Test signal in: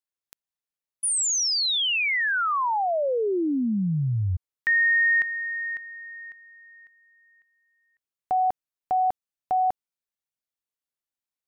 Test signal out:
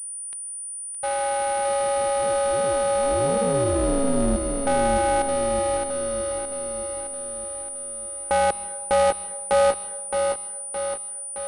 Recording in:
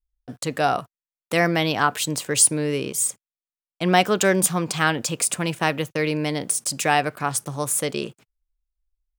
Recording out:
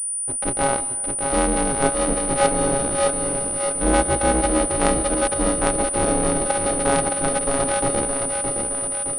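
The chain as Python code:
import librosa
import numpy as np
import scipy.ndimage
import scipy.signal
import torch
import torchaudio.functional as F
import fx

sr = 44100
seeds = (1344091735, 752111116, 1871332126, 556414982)

p1 = np.r_[np.sort(x[:len(x) // 64 * 64].reshape(-1, 64), axis=1).ravel(), x[len(x) // 64 * 64:]]
p2 = fx.peak_eq(p1, sr, hz=3600.0, db=-13.5, octaves=2.9)
p3 = fx.rider(p2, sr, range_db=10, speed_s=0.5)
p4 = p2 + (p3 * 10.0 ** (0.0 / 20.0))
p5 = p4 * np.sin(2.0 * np.pi * 130.0 * np.arange(len(p4)) / sr)
p6 = p5 + fx.echo_feedback(p5, sr, ms=617, feedback_pct=56, wet_db=-5.5, dry=0)
p7 = fx.rev_plate(p6, sr, seeds[0], rt60_s=1.4, hf_ratio=0.6, predelay_ms=120, drr_db=16.5)
y = fx.pwm(p7, sr, carrier_hz=9400.0)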